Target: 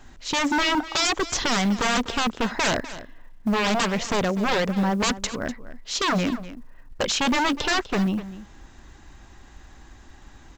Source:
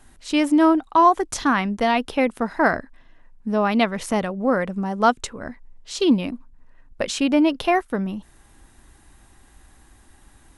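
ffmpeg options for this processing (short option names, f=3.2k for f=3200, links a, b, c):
-af "aresample=16000,aeval=exprs='0.0841*(abs(mod(val(0)/0.0841+3,4)-2)-1)':c=same,aresample=44100,acrusher=bits=9:mode=log:mix=0:aa=0.000001,aecho=1:1:248:0.178,volume=4.5dB"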